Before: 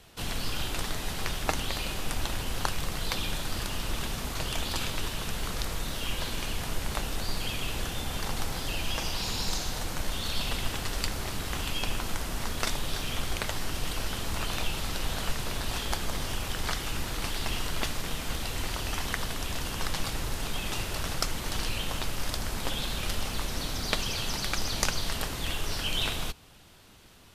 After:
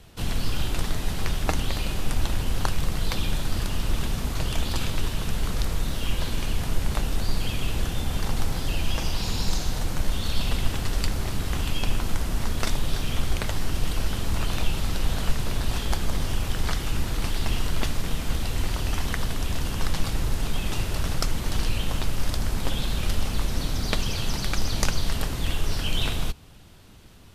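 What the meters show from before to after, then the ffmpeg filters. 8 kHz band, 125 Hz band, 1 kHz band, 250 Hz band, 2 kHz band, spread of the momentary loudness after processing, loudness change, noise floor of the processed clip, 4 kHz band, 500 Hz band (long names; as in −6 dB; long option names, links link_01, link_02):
0.0 dB, +8.0 dB, +1.0 dB, +5.5 dB, 0.0 dB, 2 LU, +3.5 dB, −32 dBFS, 0.0 dB, +2.5 dB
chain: -af "lowshelf=frequency=310:gain=9"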